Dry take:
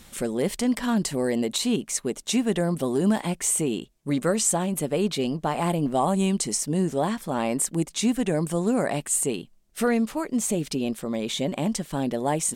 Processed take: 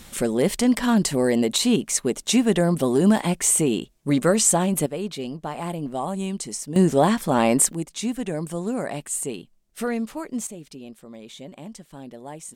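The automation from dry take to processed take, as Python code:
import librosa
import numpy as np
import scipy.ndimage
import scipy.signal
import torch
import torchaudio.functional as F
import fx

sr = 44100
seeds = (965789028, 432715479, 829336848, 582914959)

y = fx.gain(x, sr, db=fx.steps((0.0, 4.5), (4.86, -5.0), (6.76, 7.0), (7.73, -3.5), (10.47, -13.0)))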